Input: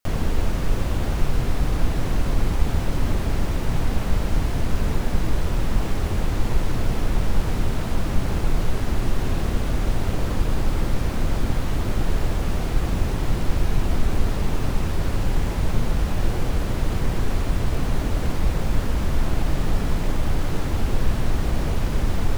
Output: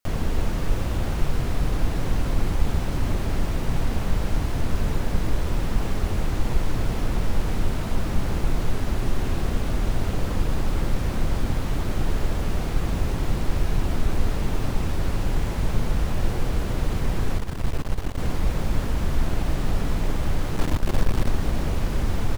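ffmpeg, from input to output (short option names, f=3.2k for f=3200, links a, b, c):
-filter_complex "[0:a]asettb=1/sr,asplit=3[a][b][c];[a]atrim=end=17.374[d];[b]atrim=start=17.37:end=18.18,asetpts=PTS-STARTPTS,afade=t=in:d=0.004:c=qsin,afade=t=out:st=0.806:d=0.004:c=qsin,aeval=exprs='max(val(0),0)':c=same[e];[c]atrim=start=18.176[f];[d][e]acrossfade=d=0.004:c1=hsin:c2=qsin[g];[g][f]acrossfade=d=0.004:c1=qsin:c2=hsin,asettb=1/sr,asplit=3[h][i][j];[h]atrim=end=20.564[k];[i]atrim=start=20.56:end=21.29,asetpts=PTS-STARTPTS,afade=t=in:d=0.004:c=qsin,afade=t=out:st=0.726:d=0.004:c=qsin,aeval=exprs='0.473*(cos(1*acos(clip(val(0)/0.473,-1,1)))-cos(1*PI/2))+0.0668*(cos(8*acos(clip(val(0)/0.473,-1,1)))-cos(8*PI/2))':c=same[l];[j]atrim=start=21.286[m];[k][l]acrossfade=d=0.004:c1=hsin:c2=qsin[n];[n][m]acrossfade=d=0.004:c1=qsin:c2=hsin,aecho=1:1:277:0.299,volume=-2dB"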